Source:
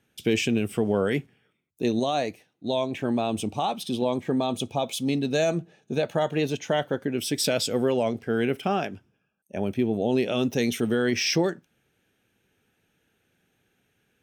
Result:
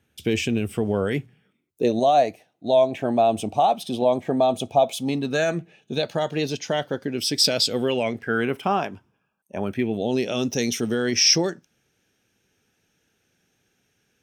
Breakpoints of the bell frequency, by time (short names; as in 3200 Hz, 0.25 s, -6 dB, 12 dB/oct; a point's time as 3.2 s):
bell +12 dB 0.55 oct
1.09 s 79 Hz
1.97 s 680 Hz
4.95 s 680 Hz
6.14 s 4900 Hz
7.58 s 4900 Hz
8.56 s 1000 Hz
9.58 s 1000 Hz
10.16 s 5600 Hz